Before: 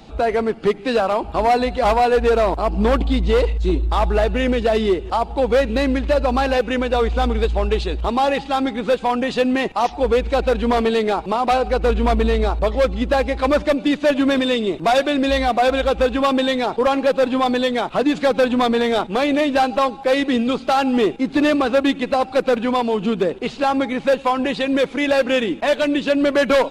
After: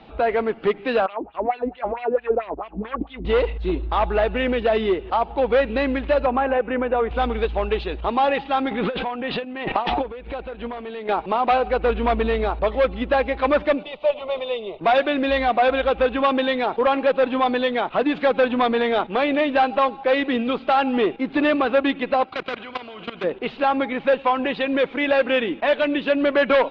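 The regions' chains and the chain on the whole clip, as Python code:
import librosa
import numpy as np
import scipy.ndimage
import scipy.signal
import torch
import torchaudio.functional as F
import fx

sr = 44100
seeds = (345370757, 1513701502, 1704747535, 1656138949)

y = fx.chain(x, sr, fx.riaa(side='playback'),
    fx.wah_lfo(hz=4.5, low_hz=270.0, high_hz=3400.0, q=3.0), at=(1.06, 3.25))
y = fx.chain(y, sr, fx.gaussian_blur(sigma=3.7),
    fx.low_shelf(hz=61.0, db=-10.5),
    fx.band_squash(depth_pct=70), at=(6.26, 7.11))
y = fx.chain(y, sr, fx.transient(attack_db=-7, sustain_db=11),
    fx.lowpass(hz=4700.0, slope=24),
    fx.over_compress(threshold_db=-23.0, ratio=-0.5), at=(8.71, 11.09))
y = fx.chain(y, sr, fx.lowpass(hz=3600.0, slope=12),
    fx.peak_eq(hz=110.0, db=-7.0, octaves=2.2),
    fx.fixed_phaser(hz=680.0, stages=4), at=(13.83, 14.81))
y = fx.chain(y, sr, fx.level_steps(step_db=17),
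    fx.notch_comb(f0_hz=890.0),
    fx.spectral_comp(ratio=2.0), at=(22.24, 23.24))
y = scipy.signal.sosfilt(scipy.signal.butter(4, 3300.0, 'lowpass', fs=sr, output='sos'), y)
y = fx.low_shelf(y, sr, hz=270.0, db=-8.5)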